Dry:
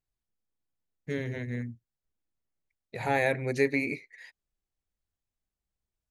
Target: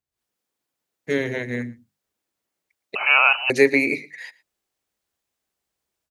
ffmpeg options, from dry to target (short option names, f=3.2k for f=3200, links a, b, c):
-filter_complex "[0:a]highpass=66,bandreject=f=50:t=h:w=6,bandreject=f=100:t=h:w=6,bandreject=f=150:t=h:w=6,bandreject=f=200:t=h:w=6,bandreject=f=250:t=h:w=6,bandreject=f=300:t=h:w=6,acrossover=split=240[a][b];[b]dynaudnorm=f=110:g=3:m=12dB[c];[a][c]amix=inputs=2:normalize=0,aecho=1:1:114:0.0794,asettb=1/sr,asplit=3[d][e][f];[d]atrim=end=2.954[g];[e]atrim=start=2.95:end=3.5,asetpts=PTS-STARTPTS,afade=t=in:d=0.004:c=qsin,afade=t=out:st=0.546:d=0.004:c=qsin,lowpass=f=2.6k:t=q:w=0.5098,lowpass=f=2.6k:t=q:w=0.6013,lowpass=f=2.6k:t=q:w=0.9,lowpass=f=2.6k:t=q:w=2.563,afreqshift=-3100[h];[f]atrim=start=3.496[i];[g][h]acrossfade=d=0.004:c1=hsin:c2=qsin[j];[j][i]acrossfade=d=0.004:c1=qsin:c2=hsin"